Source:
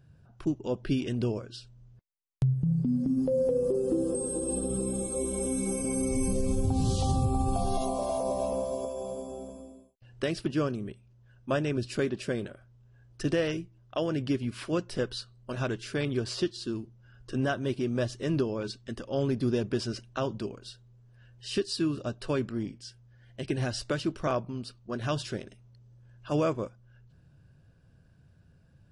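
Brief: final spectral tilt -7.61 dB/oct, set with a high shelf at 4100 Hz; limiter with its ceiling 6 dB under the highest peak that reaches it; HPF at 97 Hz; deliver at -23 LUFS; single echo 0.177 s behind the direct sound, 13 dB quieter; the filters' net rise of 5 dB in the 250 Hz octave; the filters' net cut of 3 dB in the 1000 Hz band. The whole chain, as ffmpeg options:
-af "highpass=97,equalizer=f=250:t=o:g=6.5,equalizer=f=1k:t=o:g=-4.5,highshelf=f=4.1k:g=-8.5,alimiter=limit=-19.5dB:level=0:latency=1,aecho=1:1:177:0.224,volume=7dB"

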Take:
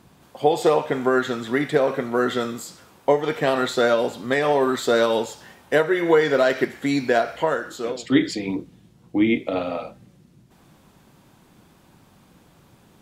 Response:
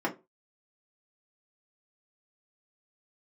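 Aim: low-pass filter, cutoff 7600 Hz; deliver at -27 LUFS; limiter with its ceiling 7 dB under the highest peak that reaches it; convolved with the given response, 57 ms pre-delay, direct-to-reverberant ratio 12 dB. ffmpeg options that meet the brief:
-filter_complex "[0:a]lowpass=7.6k,alimiter=limit=-11dB:level=0:latency=1,asplit=2[a][b];[1:a]atrim=start_sample=2205,adelay=57[c];[b][c]afir=irnorm=-1:irlink=0,volume=-21dB[d];[a][d]amix=inputs=2:normalize=0,volume=-4dB"

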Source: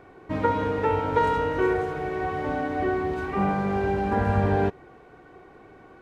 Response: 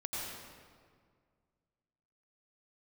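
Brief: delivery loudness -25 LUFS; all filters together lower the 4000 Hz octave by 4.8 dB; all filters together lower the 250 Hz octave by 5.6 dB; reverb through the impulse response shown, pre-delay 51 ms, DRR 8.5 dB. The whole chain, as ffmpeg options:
-filter_complex "[0:a]equalizer=f=250:t=o:g=-8.5,equalizer=f=4k:t=o:g=-7,asplit=2[a][b];[1:a]atrim=start_sample=2205,adelay=51[c];[b][c]afir=irnorm=-1:irlink=0,volume=-11dB[d];[a][d]amix=inputs=2:normalize=0,volume=1.5dB"

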